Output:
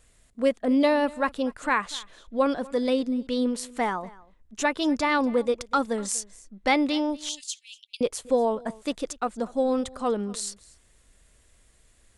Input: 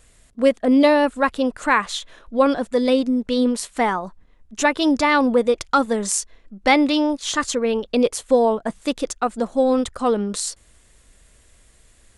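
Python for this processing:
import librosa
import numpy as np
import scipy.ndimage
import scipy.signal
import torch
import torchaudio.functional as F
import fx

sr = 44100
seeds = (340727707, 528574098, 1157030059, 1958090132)

p1 = fx.steep_highpass(x, sr, hz=2800.0, slope=48, at=(7.29, 8.01))
p2 = p1 + fx.echo_single(p1, sr, ms=242, db=-22.0, dry=0)
y = p2 * librosa.db_to_amplitude(-6.5)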